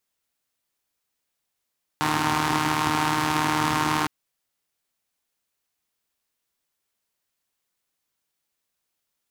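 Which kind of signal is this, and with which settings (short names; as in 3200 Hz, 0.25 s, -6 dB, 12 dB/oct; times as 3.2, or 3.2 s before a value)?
four-cylinder engine model, steady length 2.06 s, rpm 4600, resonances 130/280/920 Hz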